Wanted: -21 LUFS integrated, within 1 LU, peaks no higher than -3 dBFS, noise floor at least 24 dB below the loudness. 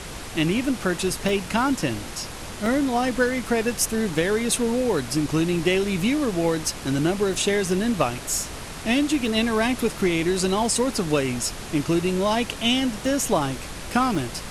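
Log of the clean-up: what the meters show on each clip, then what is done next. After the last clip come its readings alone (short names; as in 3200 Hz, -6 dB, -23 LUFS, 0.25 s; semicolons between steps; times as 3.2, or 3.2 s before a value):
dropouts 6; longest dropout 1.4 ms; noise floor -36 dBFS; noise floor target -48 dBFS; loudness -23.5 LUFS; peak -8.5 dBFS; loudness target -21.0 LUFS
-> interpolate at 1.29/2.66/7.34/9.26/13.06/14.15, 1.4 ms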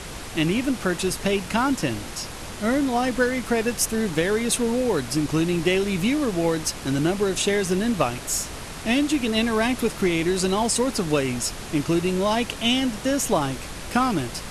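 dropouts 0; noise floor -36 dBFS; noise floor target -48 dBFS
-> noise print and reduce 12 dB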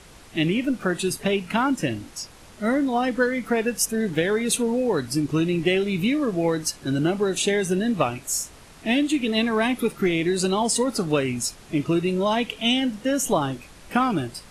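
noise floor -47 dBFS; noise floor target -48 dBFS
-> noise print and reduce 6 dB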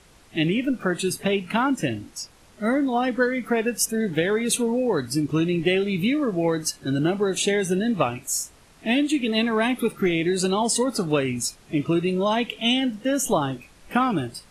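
noise floor -53 dBFS; loudness -23.5 LUFS; peak -8.5 dBFS; loudness target -21.0 LUFS
-> gain +2.5 dB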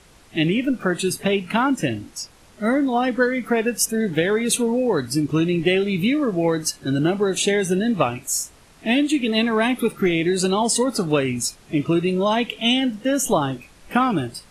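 loudness -21.0 LUFS; peak -6.0 dBFS; noise floor -50 dBFS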